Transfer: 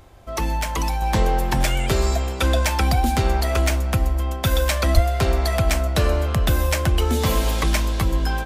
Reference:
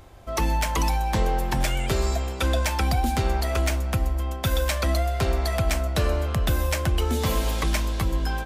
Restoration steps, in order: de-plosive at 4.94 s; gain correction -4 dB, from 1.02 s

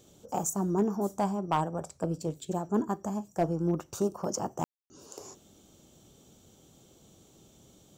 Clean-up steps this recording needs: clip repair -18.5 dBFS; room tone fill 4.64–4.90 s

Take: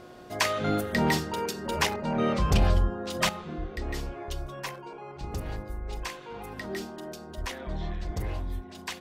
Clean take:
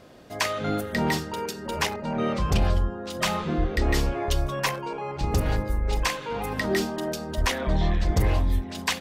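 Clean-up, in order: de-hum 361 Hz, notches 4; trim 0 dB, from 3.29 s +10.5 dB

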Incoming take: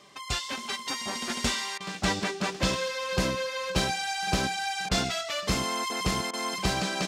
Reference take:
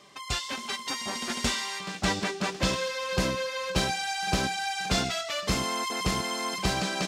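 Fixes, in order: interpolate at 1.78/4.89/6.31 s, 23 ms

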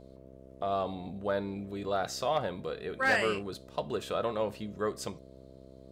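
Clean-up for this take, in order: clip repair -19 dBFS; de-hum 65.7 Hz, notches 10

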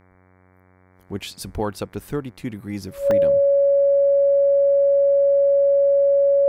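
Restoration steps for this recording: de-hum 92.2 Hz, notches 25; band-stop 560 Hz, Q 30; interpolate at 2.11/3.11 s, 1.1 ms

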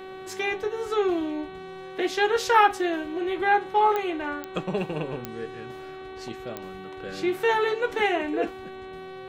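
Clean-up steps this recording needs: de-click; de-hum 378.2 Hz, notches 11

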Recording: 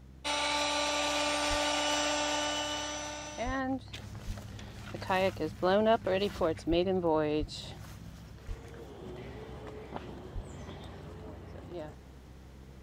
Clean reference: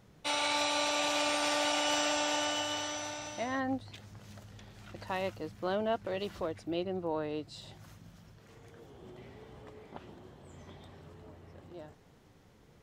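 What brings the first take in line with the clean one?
de-hum 65.3 Hz, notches 5; de-plosive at 1.49/3.45/4.26/6.69/7.39/8.47/10.34 s; trim 0 dB, from 3.93 s -6 dB

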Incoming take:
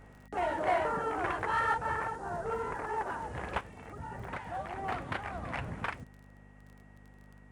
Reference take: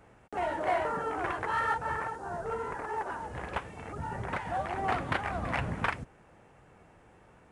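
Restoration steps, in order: de-click; de-hum 50.1 Hz, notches 5; band-stop 1.9 kHz, Q 30; trim 0 dB, from 3.61 s +5.5 dB

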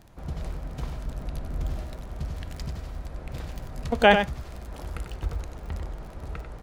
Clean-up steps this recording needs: de-click; inverse comb 94 ms -7.5 dB

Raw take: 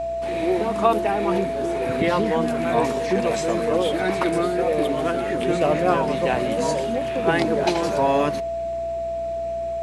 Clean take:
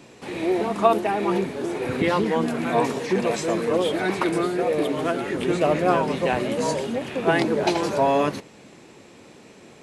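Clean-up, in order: de-hum 61 Hz, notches 12; band-stop 670 Hz, Q 30

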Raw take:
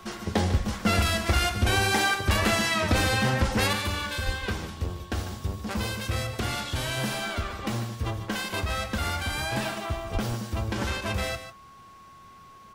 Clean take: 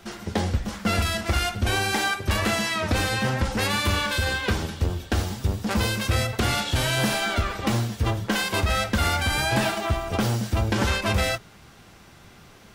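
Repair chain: band-stop 1.1 kHz, Q 30; 4.25–4.37 s: high-pass 140 Hz 24 dB/octave; 10.13–10.25 s: high-pass 140 Hz 24 dB/octave; inverse comb 147 ms -11 dB; 3.73 s: gain correction +6.5 dB

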